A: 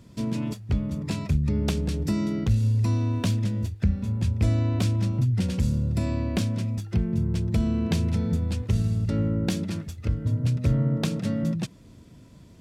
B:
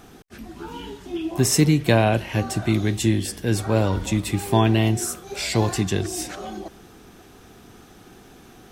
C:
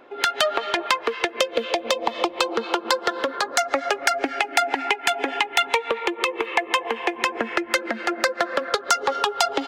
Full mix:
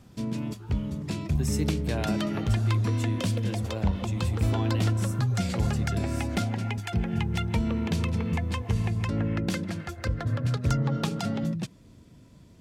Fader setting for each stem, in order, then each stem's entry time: -3.0 dB, -15.0 dB, -15.5 dB; 0.00 s, 0.00 s, 1.80 s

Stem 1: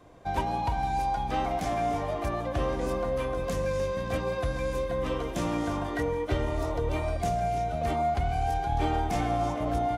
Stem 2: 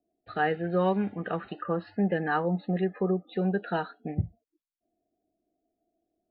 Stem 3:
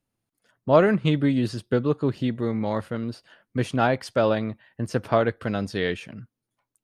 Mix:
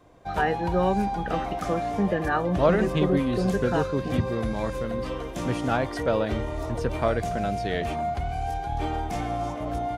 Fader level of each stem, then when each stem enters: -1.5 dB, +1.5 dB, -4.0 dB; 0.00 s, 0.00 s, 1.90 s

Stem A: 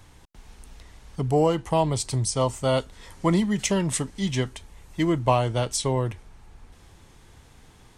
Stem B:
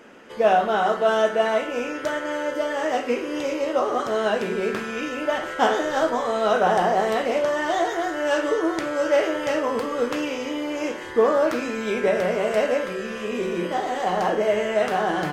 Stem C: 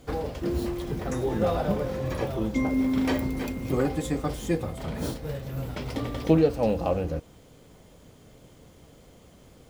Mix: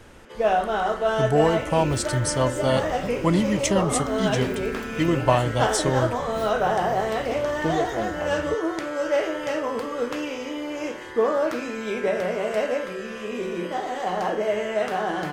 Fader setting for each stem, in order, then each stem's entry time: +0.5 dB, -3.0 dB, -6.0 dB; 0.00 s, 0.00 s, 1.35 s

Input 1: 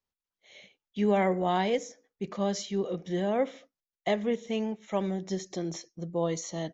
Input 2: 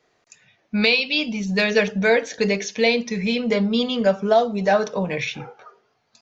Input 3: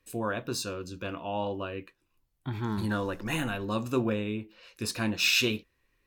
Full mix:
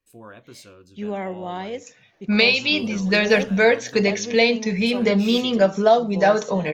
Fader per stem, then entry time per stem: -3.5 dB, +1.5 dB, -11.0 dB; 0.00 s, 1.55 s, 0.00 s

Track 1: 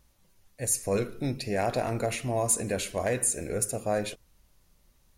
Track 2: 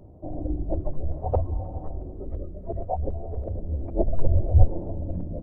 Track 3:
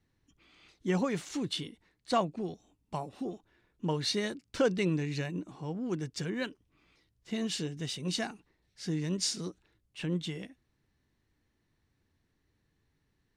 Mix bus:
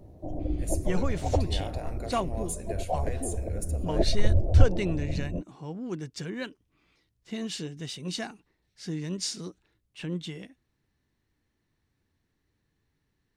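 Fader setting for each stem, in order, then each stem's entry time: -11.0 dB, -1.5 dB, -0.5 dB; 0.00 s, 0.00 s, 0.00 s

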